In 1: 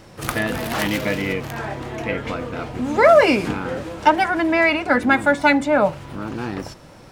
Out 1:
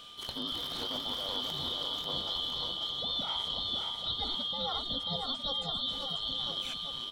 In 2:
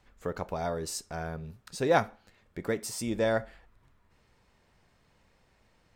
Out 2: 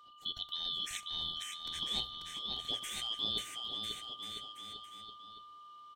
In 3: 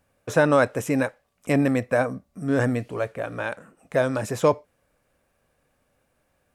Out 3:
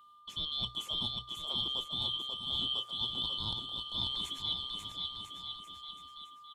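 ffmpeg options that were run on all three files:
-filter_complex "[0:a]afftfilt=real='real(if(lt(b,272),68*(eq(floor(b/68),0)*1+eq(floor(b/68),1)*3+eq(floor(b/68),2)*0+eq(floor(b/68),3)*2)+mod(b,68),b),0)':imag='imag(if(lt(b,272),68*(eq(floor(b/68),0)*1+eq(floor(b/68),1)*3+eq(floor(b/68),2)*0+eq(floor(b/68),3)*2)+mod(b,68),b),0)':win_size=2048:overlap=0.75,acrossover=split=4800[s0][s1];[s1]acompressor=threshold=0.0158:ratio=4:attack=1:release=60[s2];[s0][s2]amix=inputs=2:normalize=0,bandreject=f=60:t=h:w=6,bandreject=f=120:t=h:w=6,areverse,acompressor=threshold=0.0398:ratio=16,areverse,aeval=exprs='val(0)+0.00282*sin(2*PI*1200*n/s)':c=same,asplit=2[s3][s4];[s4]aecho=0:1:540|999|1389|1721|2003:0.631|0.398|0.251|0.158|0.1[s5];[s3][s5]amix=inputs=2:normalize=0,volume=0.562"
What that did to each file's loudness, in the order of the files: -13.5 LU, -5.5 LU, -10.5 LU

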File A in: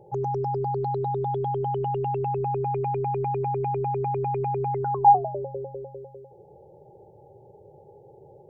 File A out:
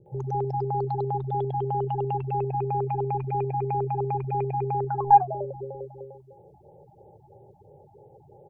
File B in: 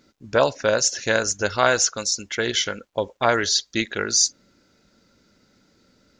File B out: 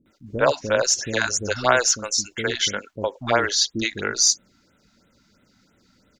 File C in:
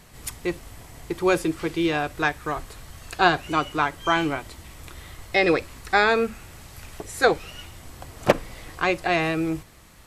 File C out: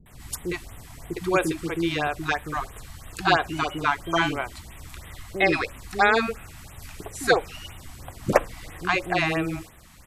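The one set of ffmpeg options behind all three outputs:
-filter_complex "[0:a]aeval=exprs='0.891*(cos(1*acos(clip(val(0)/0.891,-1,1)))-cos(1*PI/2))+0.0398*(cos(2*acos(clip(val(0)/0.891,-1,1)))-cos(2*PI/2))+0.0251*(cos(3*acos(clip(val(0)/0.891,-1,1)))-cos(3*PI/2))':c=same,acrossover=split=380[s0][s1];[s1]adelay=60[s2];[s0][s2]amix=inputs=2:normalize=0,afftfilt=real='re*(1-between(b*sr/1024,420*pow(5700/420,0.5+0.5*sin(2*PI*3*pts/sr))/1.41,420*pow(5700/420,0.5+0.5*sin(2*PI*3*pts/sr))*1.41))':imag='im*(1-between(b*sr/1024,420*pow(5700/420,0.5+0.5*sin(2*PI*3*pts/sr))/1.41,420*pow(5700/420,0.5+0.5*sin(2*PI*3*pts/sr))*1.41))':win_size=1024:overlap=0.75,volume=1.19"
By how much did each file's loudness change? -1.0 LU, 0.0 LU, -1.0 LU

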